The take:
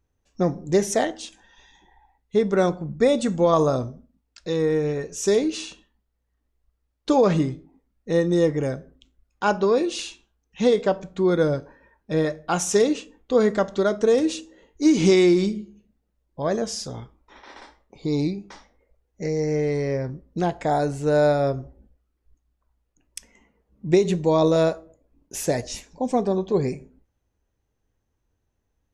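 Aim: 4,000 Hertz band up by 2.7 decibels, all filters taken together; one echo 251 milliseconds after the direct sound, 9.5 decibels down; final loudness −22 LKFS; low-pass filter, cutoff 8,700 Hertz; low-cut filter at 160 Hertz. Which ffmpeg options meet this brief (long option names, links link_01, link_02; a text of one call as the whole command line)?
ffmpeg -i in.wav -af "highpass=160,lowpass=8700,equalizer=frequency=4000:width_type=o:gain=3.5,aecho=1:1:251:0.335,volume=0.5dB" out.wav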